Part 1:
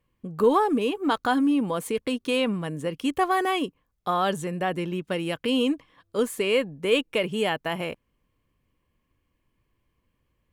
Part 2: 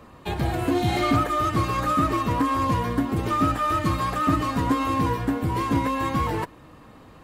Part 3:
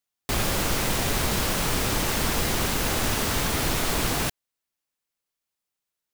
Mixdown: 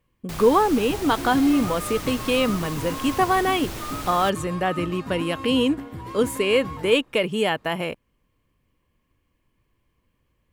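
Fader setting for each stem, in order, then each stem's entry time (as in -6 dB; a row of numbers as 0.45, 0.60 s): +3.0, -11.0, -10.0 dB; 0.00, 0.50, 0.00 s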